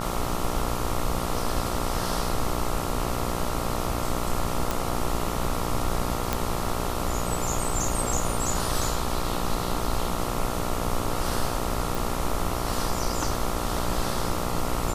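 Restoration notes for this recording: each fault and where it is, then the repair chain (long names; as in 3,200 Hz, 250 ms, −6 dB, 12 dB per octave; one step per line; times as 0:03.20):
mains buzz 60 Hz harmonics 23 −31 dBFS
0:04.71: click
0:06.33: click
0:11.95: click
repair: click removal
hum removal 60 Hz, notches 23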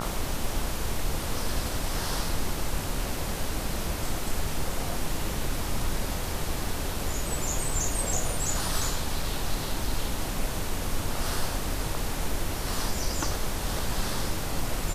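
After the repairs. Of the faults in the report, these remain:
none of them is left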